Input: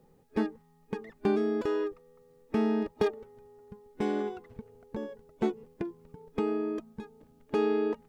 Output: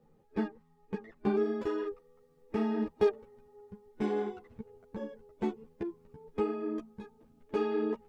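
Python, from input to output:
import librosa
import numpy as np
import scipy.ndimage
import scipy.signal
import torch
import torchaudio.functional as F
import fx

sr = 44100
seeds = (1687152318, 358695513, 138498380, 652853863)

y = fx.high_shelf(x, sr, hz=4900.0, db=fx.steps((0.0, -9.5), (1.42, -4.0)))
y = fx.ensemble(y, sr)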